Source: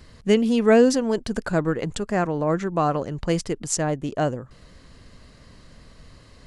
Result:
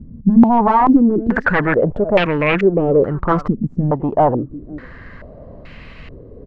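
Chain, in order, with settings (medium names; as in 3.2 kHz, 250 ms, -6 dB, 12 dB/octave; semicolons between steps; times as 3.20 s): delay 500 ms -22.5 dB; sine folder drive 15 dB, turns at -4.5 dBFS; step-sequenced low-pass 2.3 Hz 220–2500 Hz; trim -9 dB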